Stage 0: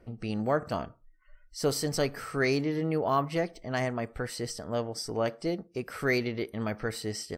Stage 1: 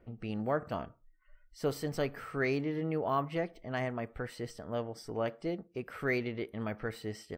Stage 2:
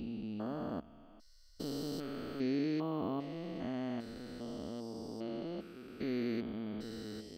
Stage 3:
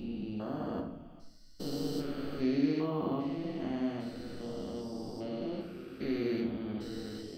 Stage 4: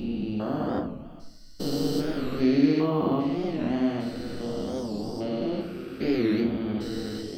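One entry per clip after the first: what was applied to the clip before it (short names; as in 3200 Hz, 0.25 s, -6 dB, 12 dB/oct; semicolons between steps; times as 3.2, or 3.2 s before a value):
band shelf 7100 Hz -10 dB; gain -4.5 dB
stepped spectrum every 0.4 s; graphic EQ 125/250/500/1000/2000/4000/8000 Hz -10/+7/-6/-3/-10/+8/-3 dB; gain +1 dB
shoebox room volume 150 m³, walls mixed, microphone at 0.91 m
record warp 45 rpm, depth 160 cents; gain +8.5 dB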